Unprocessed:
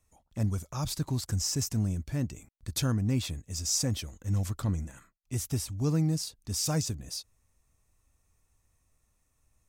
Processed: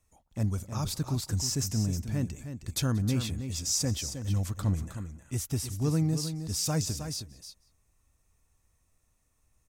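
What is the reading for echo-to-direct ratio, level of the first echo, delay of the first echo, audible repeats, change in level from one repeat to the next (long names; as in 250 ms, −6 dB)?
−9.0 dB, −23.5 dB, 182 ms, 3, repeats not evenly spaced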